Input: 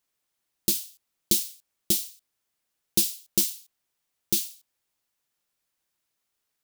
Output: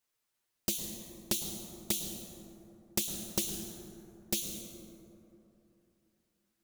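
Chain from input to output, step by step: compressor 8:1, threshold -22 dBFS, peak gain reduction 6.5 dB; envelope flanger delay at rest 8.6 ms, full sweep at -27.5 dBFS; plate-style reverb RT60 3.2 s, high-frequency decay 0.35×, pre-delay 95 ms, DRR 3.5 dB; Doppler distortion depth 0.61 ms

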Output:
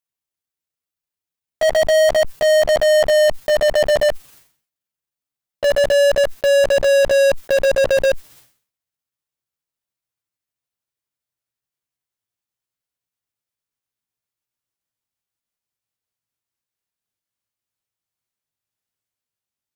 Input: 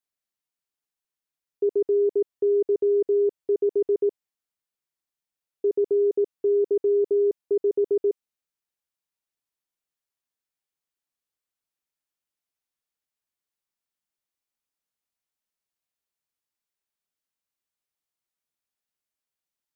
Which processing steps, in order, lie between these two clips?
gliding pitch shift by +8.5 st ending unshifted; dynamic EQ 500 Hz, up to -4 dB, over -32 dBFS, Q 1; transient shaper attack -7 dB, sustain 0 dB; bell 110 Hz +10 dB 0.96 oct; in parallel at -6 dB: fuzz box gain 49 dB, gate -52 dBFS; on the sum: sustainer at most 120 dB/s; gain +3.5 dB

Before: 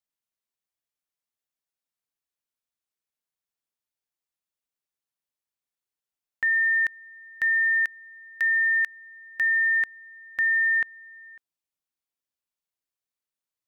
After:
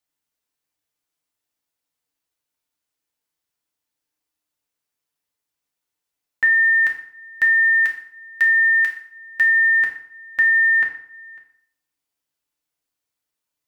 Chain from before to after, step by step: FDN reverb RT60 0.62 s, low-frequency decay 1×, high-frequency decay 0.8×, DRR 0 dB; gain +5 dB

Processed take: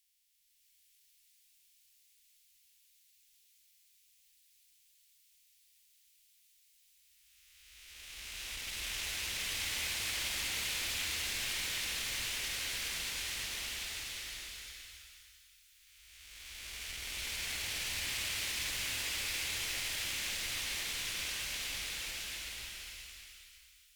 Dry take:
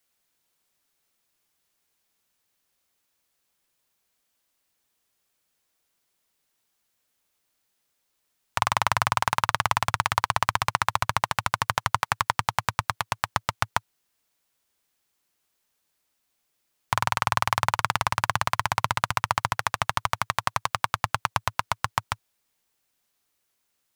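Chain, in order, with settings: time blur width 1.33 s; inverse Chebyshev band-stop 160–830 Hz, stop band 60 dB; tube stage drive 46 dB, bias 0.7; bloom reverb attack 0.66 s, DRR -6 dB; gain +7 dB

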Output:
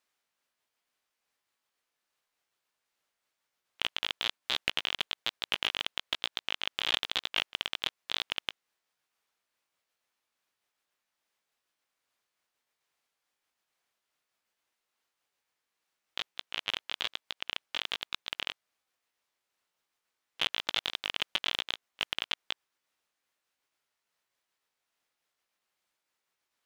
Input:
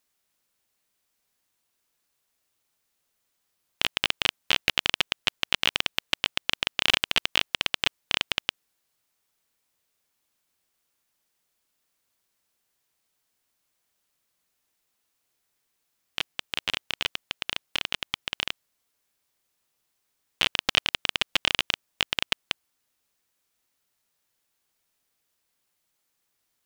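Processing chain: repeated pitch sweeps +3 st, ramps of 0.915 s; overdrive pedal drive 12 dB, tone 2500 Hz, clips at -2.5 dBFS; gain -5.5 dB

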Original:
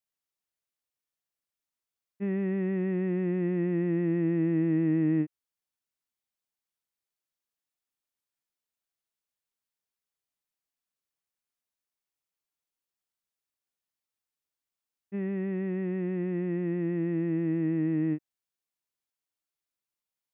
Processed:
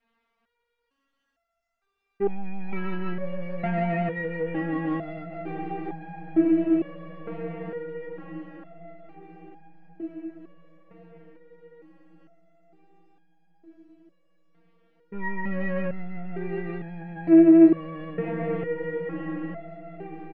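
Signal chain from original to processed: LPF 2000 Hz 12 dB/oct; bell 73 Hz +9 dB 0.28 oct; comb 4.3 ms, depth 75%; soft clip -26 dBFS, distortion -17 dB; on a send: diffused feedback echo 0.478 s, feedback 77%, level -12.5 dB; on the sum: maximiser +34.5 dB; stepped resonator 2.2 Hz 230–810 Hz

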